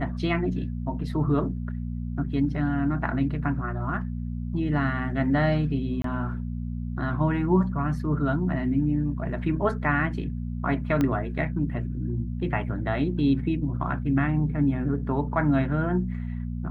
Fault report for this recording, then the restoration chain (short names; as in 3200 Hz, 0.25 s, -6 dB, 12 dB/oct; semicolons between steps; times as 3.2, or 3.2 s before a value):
hum 60 Hz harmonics 4 -31 dBFS
6.02–6.04 gap 23 ms
11.01 pop -13 dBFS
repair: de-click; de-hum 60 Hz, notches 4; interpolate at 6.02, 23 ms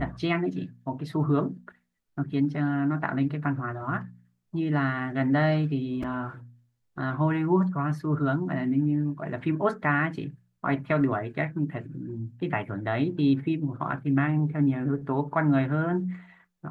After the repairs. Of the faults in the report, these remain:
11.01 pop